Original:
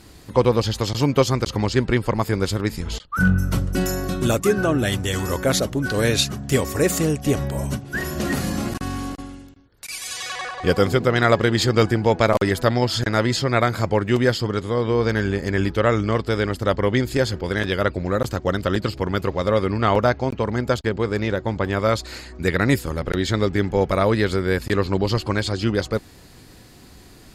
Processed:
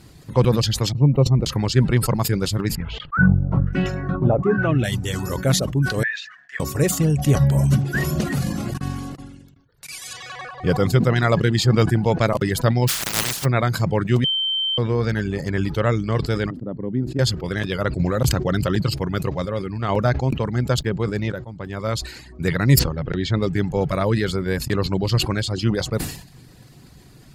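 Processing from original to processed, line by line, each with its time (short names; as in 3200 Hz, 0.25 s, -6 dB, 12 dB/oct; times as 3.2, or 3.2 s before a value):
0.92–1.45 running mean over 27 samples
2.75–4.84 LFO low-pass sine 1.1 Hz 750–2800 Hz
6.03–6.6 ladder band-pass 1800 Hz, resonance 90%
7.39–8.21 gain +4.5 dB
10.13–10.88 high shelf 4300 Hz -8 dB
12.87–13.44 spectral contrast lowered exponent 0.12
14.24–14.78 bleep 3110 Hz -14.5 dBFS
16.5–17.19 band-pass 250 Hz, Q 1.7
17.99–18.82 fast leveller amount 70%
19.45–19.89 gain -4.5 dB
21.32–22.19 fade in, from -23.5 dB
22.79–23.42 air absorption 140 m
whole clip: bell 140 Hz +12 dB 0.68 oct; reverb removal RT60 0.57 s; sustainer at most 86 dB/s; gain -3 dB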